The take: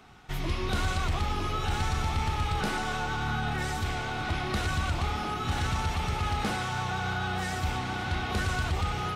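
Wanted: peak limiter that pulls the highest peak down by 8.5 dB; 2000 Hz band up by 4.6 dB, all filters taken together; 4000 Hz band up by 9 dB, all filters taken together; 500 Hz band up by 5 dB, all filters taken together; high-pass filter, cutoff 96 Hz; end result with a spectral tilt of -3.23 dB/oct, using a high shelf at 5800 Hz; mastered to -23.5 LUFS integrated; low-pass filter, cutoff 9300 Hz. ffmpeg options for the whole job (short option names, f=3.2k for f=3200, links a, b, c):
-af "highpass=96,lowpass=9.3k,equalizer=f=500:t=o:g=6.5,equalizer=f=2k:t=o:g=3.5,equalizer=f=4k:t=o:g=7.5,highshelf=f=5.8k:g=7.5,volume=6.5dB,alimiter=limit=-15dB:level=0:latency=1"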